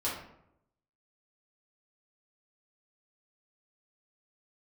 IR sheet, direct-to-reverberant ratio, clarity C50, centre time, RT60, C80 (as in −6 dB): −8.5 dB, 3.5 dB, 44 ms, 0.80 s, 7.0 dB